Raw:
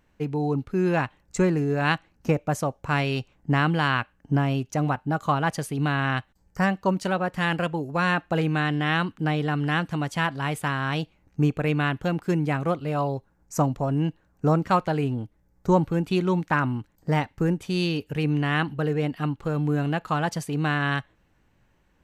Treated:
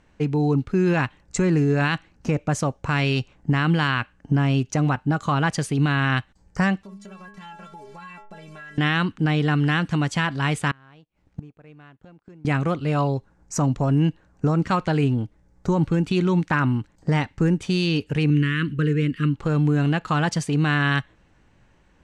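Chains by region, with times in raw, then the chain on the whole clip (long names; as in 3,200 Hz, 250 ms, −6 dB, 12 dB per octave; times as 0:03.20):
0:06.83–0:08.78: hold until the input has moved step −39.5 dBFS + stiff-string resonator 200 Hz, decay 0.3 s, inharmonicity 0.008 + downward compressor 5 to 1, threshold −45 dBFS
0:10.71–0:12.45: mu-law and A-law mismatch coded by A + high-shelf EQ 4,100 Hz −8.5 dB + gate with flip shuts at −26 dBFS, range −29 dB
0:18.30–0:19.34: running median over 3 samples + Butterworth band-reject 770 Hz, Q 0.84 + parametric band 4,800 Hz −7.5 dB 0.71 octaves
whole clip: low-pass filter 9,000 Hz 24 dB per octave; dynamic equaliser 680 Hz, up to −6 dB, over −38 dBFS, Q 0.96; brickwall limiter −18 dBFS; level +6.5 dB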